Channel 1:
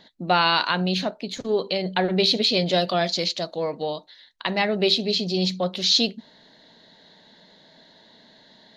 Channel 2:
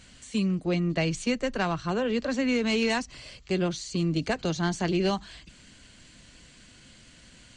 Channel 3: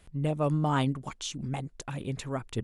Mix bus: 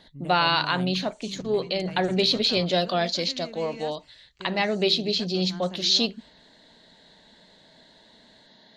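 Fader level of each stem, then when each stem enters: -2.0, -15.5, -10.0 dB; 0.00, 0.90, 0.00 s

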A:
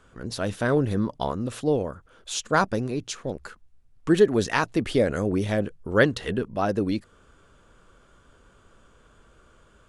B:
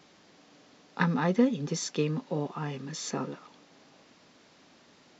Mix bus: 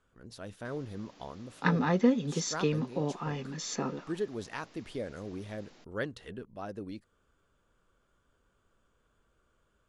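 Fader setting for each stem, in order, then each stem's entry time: -16.0, -0.5 dB; 0.00, 0.65 s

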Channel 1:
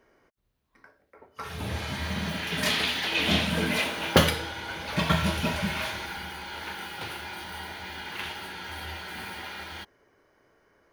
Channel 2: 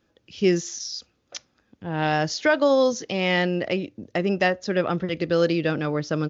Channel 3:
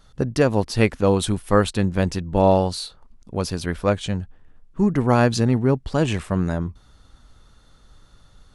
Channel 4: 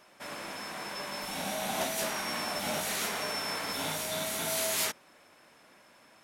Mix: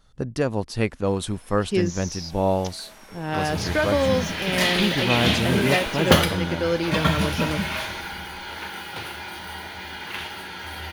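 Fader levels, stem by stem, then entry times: +3.0, -3.0, -5.5, -14.0 dB; 1.95, 1.30, 0.00, 0.85 s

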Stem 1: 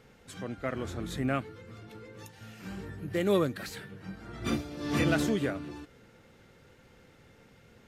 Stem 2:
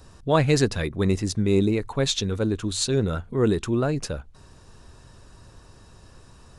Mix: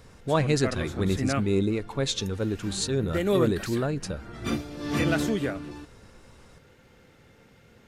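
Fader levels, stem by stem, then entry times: +2.0, -4.0 dB; 0.00, 0.00 s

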